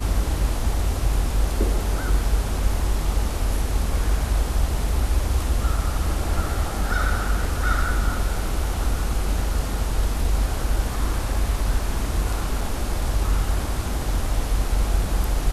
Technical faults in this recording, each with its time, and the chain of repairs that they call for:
12.61 gap 3.2 ms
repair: interpolate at 12.61, 3.2 ms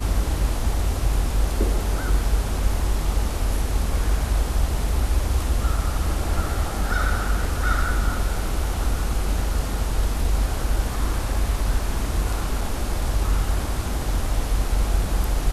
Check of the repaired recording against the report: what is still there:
none

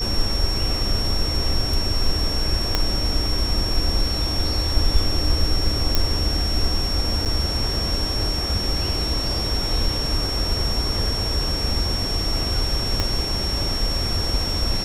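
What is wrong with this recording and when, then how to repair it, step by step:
tone 5500 Hz -25 dBFS
2.75 pop -4 dBFS
5.95 pop -3 dBFS
7.25–7.26 gap 7.9 ms
13 pop -7 dBFS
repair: de-click; notch 5500 Hz, Q 30; interpolate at 7.25, 7.9 ms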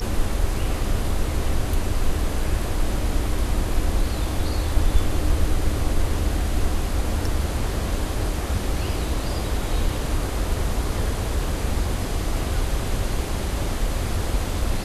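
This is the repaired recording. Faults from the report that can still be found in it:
2.75 pop
13 pop

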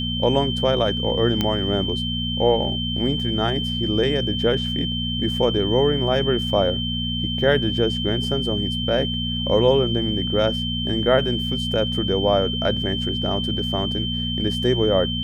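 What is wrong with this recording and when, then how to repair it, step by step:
hum 60 Hz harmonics 4 -27 dBFS
tone 3100 Hz -26 dBFS
1.41 pop -8 dBFS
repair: de-click; de-hum 60 Hz, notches 4; notch 3100 Hz, Q 30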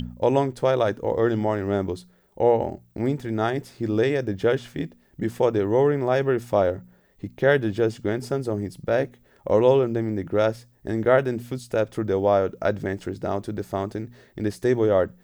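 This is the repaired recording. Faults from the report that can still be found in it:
none

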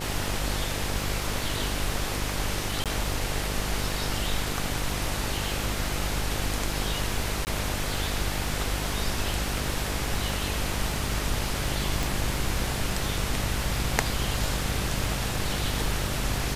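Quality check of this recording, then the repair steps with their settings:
buzz 50 Hz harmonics 18 -33 dBFS
crackle 28/s -32 dBFS
2.84–2.86 gap 17 ms
7.45–7.47 gap 19 ms
12.03 pop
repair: de-click; de-hum 50 Hz, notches 18; interpolate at 2.84, 17 ms; interpolate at 7.45, 19 ms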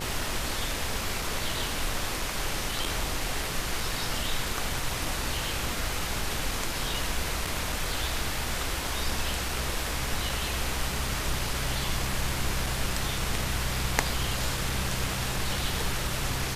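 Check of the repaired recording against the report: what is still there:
12.03 pop

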